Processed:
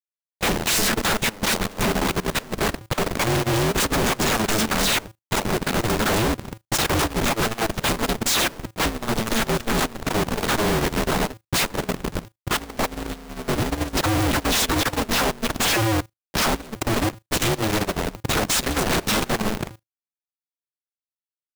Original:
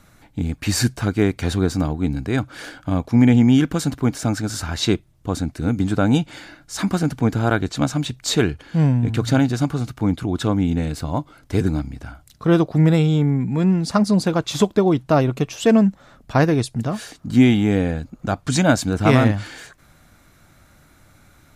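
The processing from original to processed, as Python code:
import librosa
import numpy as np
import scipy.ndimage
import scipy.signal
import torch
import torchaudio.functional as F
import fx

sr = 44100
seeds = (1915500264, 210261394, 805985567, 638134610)

y = fx.envelope_flatten(x, sr, power=0.6)
y = fx.dynamic_eq(y, sr, hz=2100.0, q=1.0, threshold_db=-35.0, ratio=4.0, max_db=-5)
y = fx.notch(y, sr, hz=4600.0, q=22.0)
y = fx.dispersion(y, sr, late='lows', ms=113.0, hz=2300.0)
y = fx.schmitt(y, sr, flips_db=-32.0)
y = fx.mod_noise(y, sr, seeds[0], snr_db=23)
y = fx.level_steps(y, sr, step_db=20)
y = y * np.sign(np.sin(2.0 * np.pi * 110.0 * np.arange(len(y)) / sr))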